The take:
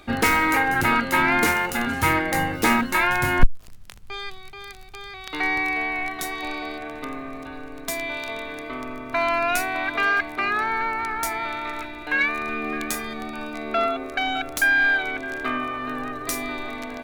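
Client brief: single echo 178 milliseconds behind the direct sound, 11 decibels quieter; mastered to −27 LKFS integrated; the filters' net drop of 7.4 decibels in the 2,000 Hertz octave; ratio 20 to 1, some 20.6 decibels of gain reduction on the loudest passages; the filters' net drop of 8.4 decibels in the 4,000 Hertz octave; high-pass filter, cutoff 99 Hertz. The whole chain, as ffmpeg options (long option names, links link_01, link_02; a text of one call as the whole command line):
ffmpeg -i in.wav -af "highpass=99,equalizer=frequency=2000:width_type=o:gain=-8,equalizer=frequency=4000:width_type=o:gain=-8,acompressor=threshold=-38dB:ratio=20,aecho=1:1:178:0.282,volume=14.5dB" out.wav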